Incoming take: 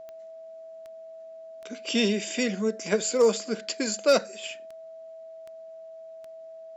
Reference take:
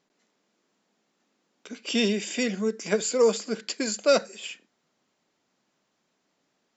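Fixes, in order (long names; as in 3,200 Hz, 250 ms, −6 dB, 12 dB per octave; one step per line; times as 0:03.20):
clipped peaks rebuilt −12.5 dBFS
click removal
notch filter 650 Hz, Q 30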